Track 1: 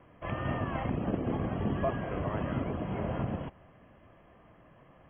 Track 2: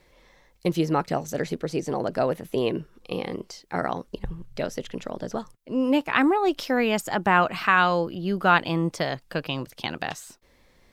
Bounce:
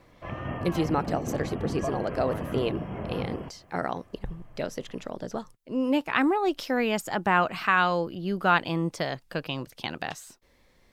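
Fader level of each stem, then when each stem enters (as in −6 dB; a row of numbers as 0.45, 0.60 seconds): −1.0, −3.0 decibels; 0.00, 0.00 seconds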